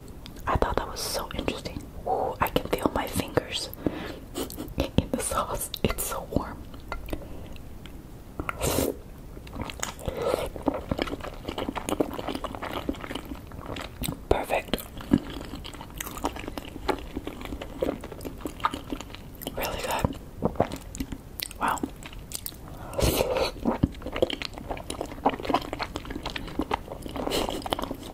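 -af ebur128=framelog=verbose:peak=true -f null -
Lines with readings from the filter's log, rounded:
Integrated loudness:
  I:         -30.7 LUFS
  Threshold: -41.0 LUFS
Loudness range:
  LRA:         4.5 LU
  Threshold: -51.1 LUFS
  LRA low:   -33.5 LUFS
  LRA high:  -29.0 LUFS
True peak:
  Peak:       -2.7 dBFS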